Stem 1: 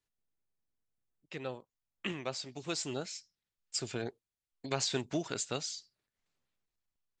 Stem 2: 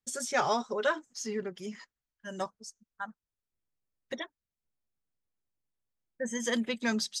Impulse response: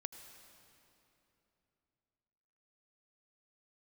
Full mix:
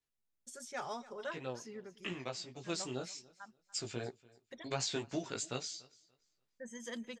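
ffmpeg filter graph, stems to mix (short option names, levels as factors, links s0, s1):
-filter_complex "[0:a]flanger=delay=15.5:depth=2.9:speed=2.7,volume=0.944,asplit=2[s0][s1];[s1]volume=0.0668[s2];[1:a]adelay=400,volume=0.211,asplit=2[s3][s4];[s4]volume=0.126[s5];[s2][s5]amix=inputs=2:normalize=0,aecho=0:1:289|578|867|1156:1|0.22|0.0484|0.0106[s6];[s0][s3][s6]amix=inputs=3:normalize=0"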